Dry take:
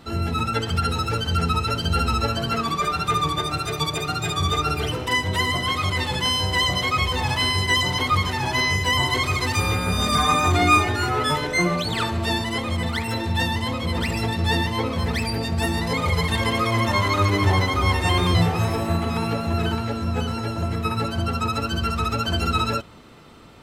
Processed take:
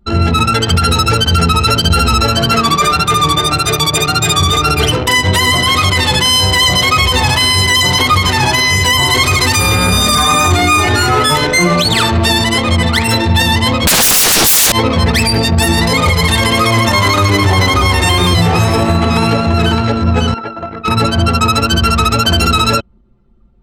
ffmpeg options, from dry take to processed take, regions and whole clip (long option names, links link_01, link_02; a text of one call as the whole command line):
ffmpeg -i in.wav -filter_complex "[0:a]asettb=1/sr,asplit=3[link_01][link_02][link_03];[link_01]atrim=end=13.874[link_04];[link_02]atrim=start=13.87:end=14.72,asetpts=PTS-STARTPTS,afade=type=in:duration=0.004:curve=qsin,afade=type=out:start_time=0.846:duration=0.004:curve=qsin,highshelf=frequency=4100:gain=10,acontrast=63,aeval=exprs='0.631*sin(PI/2*7.94*val(0)/0.631)':channel_layout=same[link_05];[link_03]atrim=start=14.716[link_06];[link_04][link_05]acrossfade=duration=0.004:curve1=hsin:curve2=qsin[link_07];[link_07][link_06]acrossfade=duration=0.004:curve1=qsin:curve2=hsin,asettb=1/sr,asplit=3[link_08][link_09][link_10];[link_08]atrim=end=20.344[link_11];[link_09]atrim=start=20.34:end=20.88,asetpts=PTS-STARTPTS,afade=type=in:duration=0.004:curve=qsin,afade=type=out:start_time=0.536:duration=0.004:curve=qsin,acrossover=split=2600[link_12][link_13];[link_13]acompressor=threshold=-48dB:ratio=4:attack=1:release=60[link_14];[link_12][link_14]amix=inputs=2:normalize=0,highpass=frequency=670:poles=1,asoftclip=type=hard:threshold=-25.5dB[link_15];[link_10]atrim=start=20.876[link_16];[link_11][link_15]acrossfade=duration=0.004:curve1=hsin:curve2=qsin[link_17];[link_17][link_16]acrossfade=duration=0.004:curve1=qsin:curve2=hsin,anlmdn=25.1,highshelf=frequency=4300:gain=10,alimiter=level_in=14dB:limit=-1dB:release=50:level=0:latency=1,volume=-1dB" out.wav